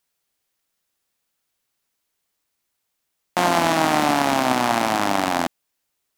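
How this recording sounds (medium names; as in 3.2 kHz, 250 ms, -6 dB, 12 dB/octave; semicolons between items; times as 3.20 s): noise floor -77 dBFS; spectral tilt -3.5 dB/octave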